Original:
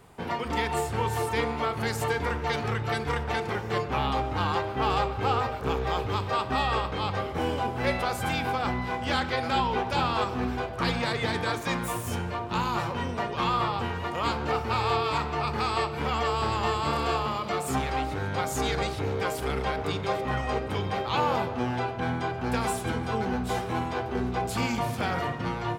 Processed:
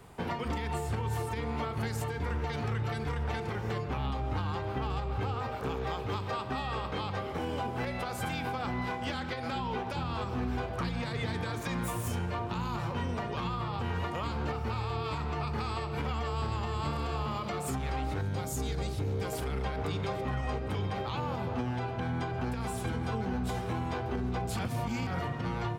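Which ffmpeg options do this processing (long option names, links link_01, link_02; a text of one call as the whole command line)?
ffmpeg -i in.wav -filter_complex "[0:a]asettb=1/sr,asplit=3[link_01][link_02][link_03];[link_01]atrim=end=5.344[link_04];[link_02]atrim=start=5.34:end=9.96,asetpts=PTS-STARTPTS,afade=type=in:duration=0.004:curve=qsin,afade=type=out:start_time=4.616:duration=0.004:curve=qsin,highpass=frequency=160:poles=1[link_05];[link_03]atrim=start=9.956[link_06];[link_04][link_05]acrossfade=duration=0.004:curve1=hsin:curve2=qsin[link_07];[link_07][link_06]acrossfade=duration=0.004:curve1=qsin:curve2=hsin,asettb=1/sr,asplit=3[link_08][link_09][link_10];[link_08]atrim=end=18.214[link_11];[link_09]atrim=start=18.21:end=19.33,asetpts=PTS-STARTPTS,afade=type=in:duration=0.004:curve=qsin,afade=type=out:start_time=1.116:duration=0.004:curve=qsin,equalizer=frequency=1400:width=0.34:gain=-10.5[link_12];[link_10]atrim=start=19.326[link_13];[link_11][link_12]acrossfade=duration=0.004:curve1=hsin:curve2=qsin[link_14];[link_14][link_13]acrossfade=duration=0.004:curve1=qsin:curve2=hsin,asplit=3[link_15][link_16][link_17];[link_15]atrim=end=24.592[link_18];[link_16]atrim=start=24.588:end=25.072,asetpts=PTS-STARTPTS,areverse[link_19];[link_17]atrim=start=25.068[link_20];[link_18][link_19]acrossfade=duration=0.004:curve1=hsin:curve2=hsin[link_21];[link_21][link_20]acrossfade=duration=0.004:curve1=hsin:curve2=hsin,acrossover=split=230[link_22][link_23];[link_23]acompressor=threshold=-32dB:ratio=6[link_24];[link_22][link_24]amix=inputs=2:normalize=0,lowshelf=frequency=150:gain=3.5,alimiter=limit=-24dB:level=0:latency=1:release=133" out.wav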